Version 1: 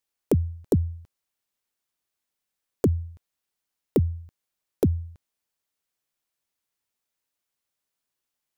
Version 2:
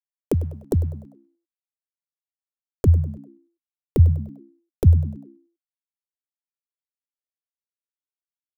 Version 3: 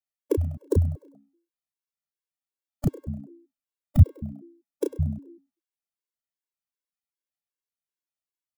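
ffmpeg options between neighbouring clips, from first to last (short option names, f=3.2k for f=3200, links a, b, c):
-filter_complex "[0:a]aeval=exprs='sgn(val(0))*max(abs(val(0))-0.00224,0)':c=same,asubboost=boost=9:cutoff=90,asplit=5[a][b][c][d][e];[b]adelay=99,afreqshift=64,volume=-17.5dB[f];[c]adelay=198,afreqshift=128,volume=-24.8dB[g];[d]adelay=297,afreqshift=192,volume=-32.2dB[h];[e]adelay=396,afreqshift=256,volume=-39.5dB[i];[a][f][g][h][i]amix=inputs=5:normalize=0"
-filter_complex "[0:a]asplit=2[a][b];[b]adelay=32,volume=-4dB[c];[a][c]amix=inputs=2:normalize=0,afftfilt=real='re*gt(sin(2*PI*2.6*pts/sr)*(1-2*mod(floor(b*sr/1024/290),2)),0)':imag='im*gt(sin(2*PI*2.6*pts/sr)*(1-2*mod(floor(b*sr/1024/290),2)),0)':win_size=1024:overlap=0.75"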